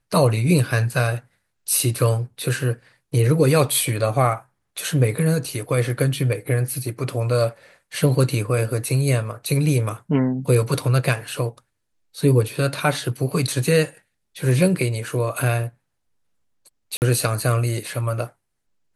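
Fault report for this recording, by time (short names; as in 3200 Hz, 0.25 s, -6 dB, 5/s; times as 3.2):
16.97–17.02 gap 49 ms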